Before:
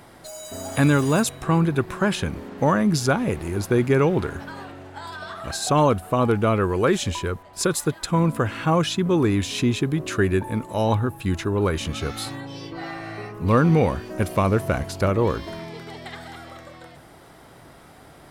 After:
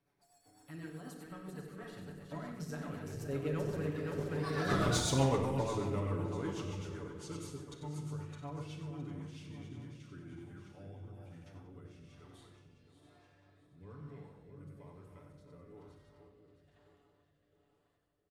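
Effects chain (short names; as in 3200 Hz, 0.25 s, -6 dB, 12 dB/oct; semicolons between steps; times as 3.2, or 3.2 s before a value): regenerating reverse delay 0.297 s, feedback 65%, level -5.5 dB; Doppler pass-by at 4.76, 40 m/s, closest 3.9 m; in parallel at -11 dB: wavefolder -36 dBFS; on the sum: feedback echo 93 ms, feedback 41%, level -8 dB; rotary speaker horn 8 Hz, later 1.1 Hz, at 9.09; on a send at -1 dB: reverb RT60 0.85 s, pre-delay 7 ms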